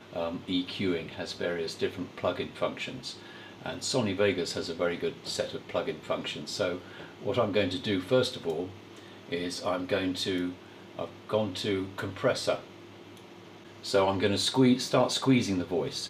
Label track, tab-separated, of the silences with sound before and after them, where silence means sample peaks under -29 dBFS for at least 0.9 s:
12.550000	13.860000	silence